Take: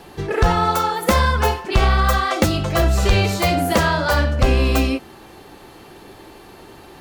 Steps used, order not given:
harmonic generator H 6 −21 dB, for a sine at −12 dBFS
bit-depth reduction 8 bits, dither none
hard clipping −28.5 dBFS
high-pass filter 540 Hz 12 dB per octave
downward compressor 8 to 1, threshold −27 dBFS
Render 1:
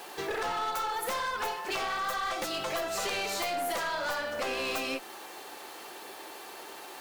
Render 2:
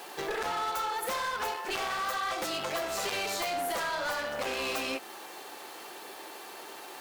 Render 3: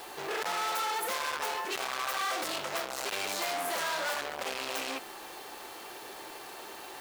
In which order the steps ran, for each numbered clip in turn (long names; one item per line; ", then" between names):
bit-depth reduction, then high-pass filter, then downward compressor, then harmonic generator, then hard clipping
bit-depth reduction, then harmonic generator, then high-pass filter, then downward compressor, then hard clipping
harmonic generator, then hard clipping, then high-pass filter, then bit-depth reduction, then downward compressor